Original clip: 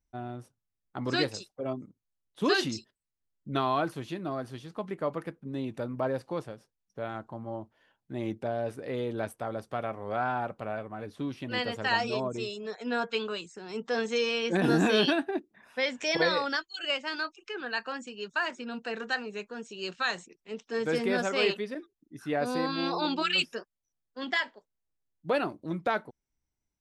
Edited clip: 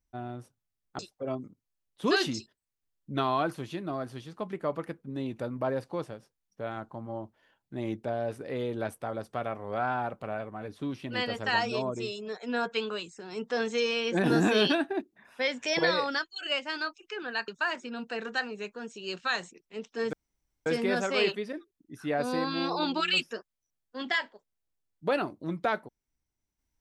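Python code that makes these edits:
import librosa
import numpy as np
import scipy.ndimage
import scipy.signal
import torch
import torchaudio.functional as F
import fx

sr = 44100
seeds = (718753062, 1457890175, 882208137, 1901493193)

y = fx.edit(x, sr, fx.cut(start_s=0.99, length_s=0.38),
    fx.cut(start_s=17.86, length_s=0.37),
    fx.insert_room_tone(at_s=20.88, length_s=0.53), tone=tone)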